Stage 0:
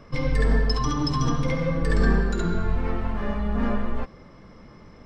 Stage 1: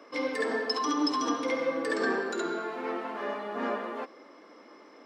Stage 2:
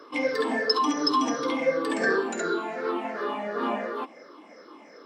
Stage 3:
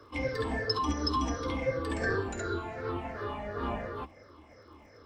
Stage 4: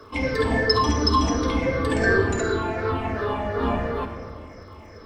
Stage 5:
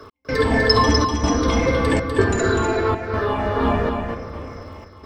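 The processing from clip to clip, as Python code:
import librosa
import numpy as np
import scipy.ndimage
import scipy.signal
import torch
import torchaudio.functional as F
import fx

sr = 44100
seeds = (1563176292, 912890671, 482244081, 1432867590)

y1 = scipy.signal.sosfilt(scipy.signal.ellip(4, 1.0, 70, 280.0, 'highpass', fs=sr, output='sos'), x)
y2 = fx.spec_ripple(y1, sr, per_octave=0.59, drift_hz=-2.8, depth_db=12)
y2 = fx.peak_eq(y2, sr, hz=110.0, db=8.0, octaves=0.86)
y2 = y2 * librosa.db_to_amplitude(2.0)
y3 = fx.octave_divider(y2, sr, octaves=2, level_db=2.0)
y3 = fx.dmg_crackle(y3, sr, seeds[0], per_s=100.0, level_db=-54.0)
y3 = y3 * librosa.db_to_amplitude(-7.0)
y4 = fx.room_shoebox(y3, sr, seeds[1], volume_m3=2600.0, walls='mixed', distance_m=1.5)
y4 = y4 * librosa.db_to_amplitude(8.0)
y5 = fx.step_gate(y4, sr, bpm=158, pattern='x..xxxxxxx', floor_db=-60.0, edge_ms=4.5)
y5 = y5 + 10.0 ** (-5.0 / 20.0) * np.pad(y5, (int(248 * sr / 1000.0), 0))[:len(y5)]
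y5 = y5 * librosa.db_to_amplitude(4.0)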